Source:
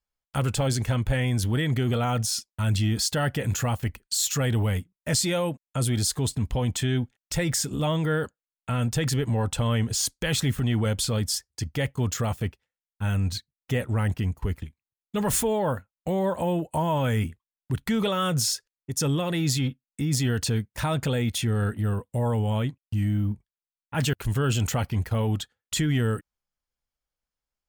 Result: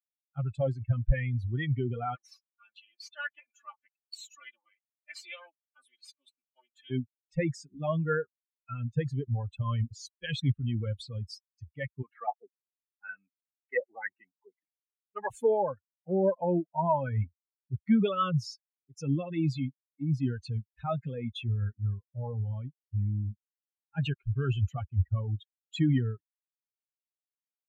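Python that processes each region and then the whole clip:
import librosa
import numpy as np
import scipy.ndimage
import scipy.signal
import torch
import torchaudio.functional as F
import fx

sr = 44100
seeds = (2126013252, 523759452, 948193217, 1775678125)

y = fx.chain(x, sr, fx.lower_of_two(delay_ms=3.4),
    fx.highpass(hz=690.0, slope=12), at=(2.15, 6.9))
y = fx.chain(y, sr, fx.highpass(hz=320.0, slope=12),
    fx.filter_lfo_lowpass(shape='square', hz=2.0, low_hz=820.0, high_hz=1900.0, q=2.3),
    fx.peak_eq(hz=3900.0, db=4.0, octaves=0.4), at=(12.02, 15.3))
y = fx.bin_expand(y, sr, power=3.0)
y = scipy.signal.sosfilt(scipy.signal.butter(2, 2400.0, 'lowpass', fs=sr, output='sos'), y)
y = fx.band_widen(y, sr, depth_pct=40)
y = y * librosa.db_to_amplitude(2.5)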